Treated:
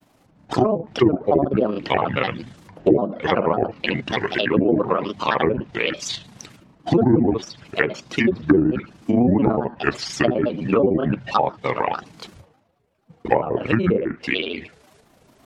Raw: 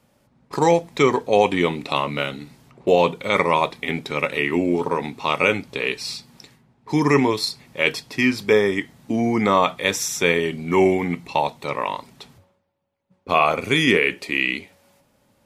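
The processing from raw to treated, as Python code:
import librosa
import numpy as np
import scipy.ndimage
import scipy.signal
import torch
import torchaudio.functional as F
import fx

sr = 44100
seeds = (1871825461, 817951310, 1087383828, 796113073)

y = fx.recorder_agc(x, sr, target_db=-10.5, rise_db_per_s=6.7, max_gain_db=30)
y = fx.granulator(y, sr, seeds[0], grain_ms=65.0, per_s=27.0, spray_ms=22.0, spread_st=7)
y = fx.env_lowpass_down(y, sr, base_hz=410.0, full_db=-14.5)
y = y * 10.0 ** (4.0 / 20.0)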